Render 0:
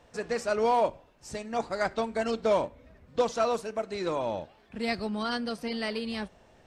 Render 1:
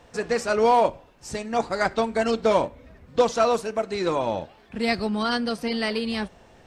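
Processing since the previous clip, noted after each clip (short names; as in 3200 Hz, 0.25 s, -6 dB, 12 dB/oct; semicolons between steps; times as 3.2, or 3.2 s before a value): notch 610 Hz, Q 17; gain +6.5 dB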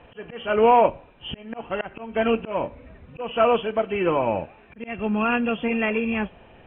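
nonlinear frequency compression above 2300 Hz 4:1; auto swell 0.274 s; air absorption 130 m; gain +3 dB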